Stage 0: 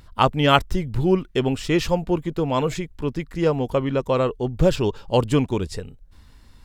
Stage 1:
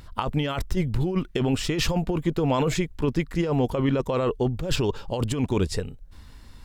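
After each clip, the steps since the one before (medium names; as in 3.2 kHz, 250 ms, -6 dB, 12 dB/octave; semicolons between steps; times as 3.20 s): compressor with a negative ratio -23 dBFS, ratio -1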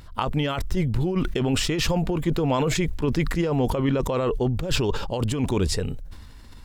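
decay stretcher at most 41 dB/s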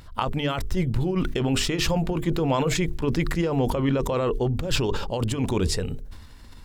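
hum notches 50/100/150/200/250/300/350/400/450 Hz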